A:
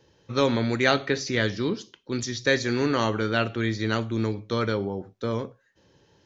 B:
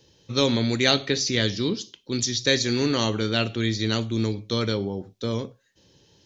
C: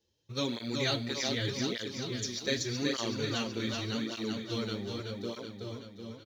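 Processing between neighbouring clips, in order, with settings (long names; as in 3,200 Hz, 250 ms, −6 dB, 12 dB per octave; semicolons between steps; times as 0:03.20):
drawn EQ curve 240 Hz 0 dB, 1,500 Hz −7 dB, 3,600 Hz +6 dB; level +2 dB
mu-law and A-law mismatch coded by A; repeating echo 378 ms, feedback 59%, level −3.5 dB; through-zero flanger with one copy inverted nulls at 0.84 Hz, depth 7.9 ms; level −8 dB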